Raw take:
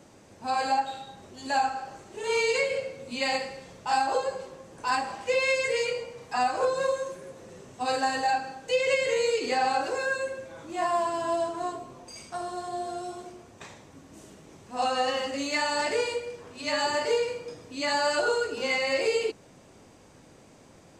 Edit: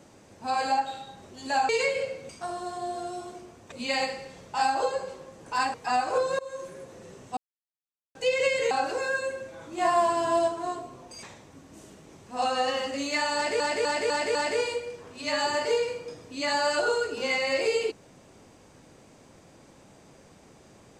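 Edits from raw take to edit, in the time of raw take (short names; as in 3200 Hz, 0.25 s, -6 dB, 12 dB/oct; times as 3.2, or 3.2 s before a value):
1.69–2.44 cut
5.06–6.21 cut
6.86–7.16 fade in, from -23.5 dB
7.84–8.62 mute
9.18–9.68 cut
10.75–11.45 gain +3.5 dB
12.2–13.63 move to 3.04
15.75–16 loop, 5 plays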